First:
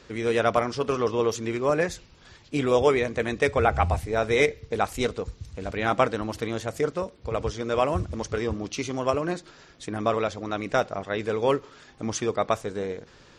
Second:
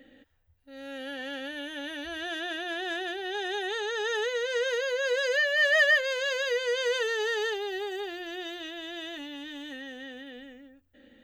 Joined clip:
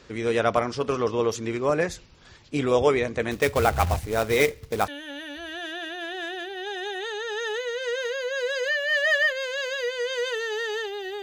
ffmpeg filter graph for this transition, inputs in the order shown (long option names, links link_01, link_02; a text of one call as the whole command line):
ffmpeg -i cue0.wav -i cue1.wav -filter_complex "[0:a]asettb=1/sr,asplit=3[link_01][link_02][link_03];[link_01]atrim=end=3.314[link_04];[link_02]atrim=start=3.31:end=4.88,asetpts=PTS-STARTPTS,afade=type=in:duration=0.004:curve=qsin,afade=type=out:start_time=1.566:duration=0.004:curve=qsin,acrusher=bits=3:mode=log:mix=0:aa=0.000001[link_05];[link_03]atrim=start=4.876[link_06];[link_04][link_05]acrossfade=duration=0.004:curve1=hsin:curve2=qsin[link_07];[link_07][link_06]acrossfade=duration=0.004:curve1=qsin:curve2=hsin,apad=whole_dur=11.22,atrim=end=11.22,atrim=end=4.882[link_08];[1:a]atrim=start=1.558:end=7.9[link_09];[link_08][link_09]acrossfade=duration=0.004:curve1=hsin:curve2=hsin" out.wav